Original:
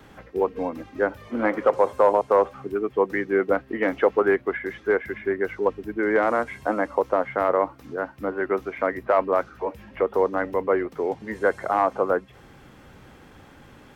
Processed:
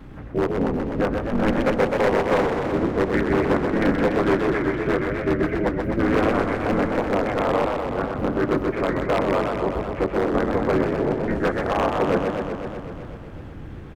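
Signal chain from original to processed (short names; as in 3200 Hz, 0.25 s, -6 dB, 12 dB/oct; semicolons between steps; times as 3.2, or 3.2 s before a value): tone controls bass +14 dB, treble -7 dB; on a send at -13 dB: reverb RT60 0.25 s, pre-delay 3 ms; on the sum: AM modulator 230 Hz, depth 65%; in parallel at 0 dB: limiter -14 dBFS, peak gain reduction 8 dB; on the sum: harmoniser -4 st -4 dB; wavefolder -9.5 dBFS; warbling echo 0.125 s, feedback 75%, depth 173 cents, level -5 dB; gain -4 dB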